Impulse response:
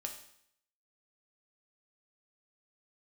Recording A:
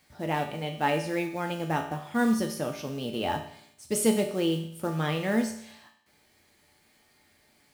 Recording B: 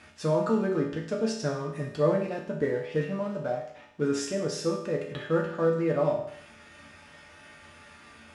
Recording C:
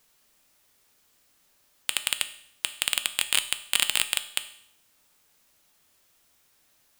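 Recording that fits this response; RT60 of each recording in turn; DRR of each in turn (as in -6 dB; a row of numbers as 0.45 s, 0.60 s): A; 0.65 s, 0.65 s, 0.65 s; 2.5 dB, -2.5 dB, 9.5 dB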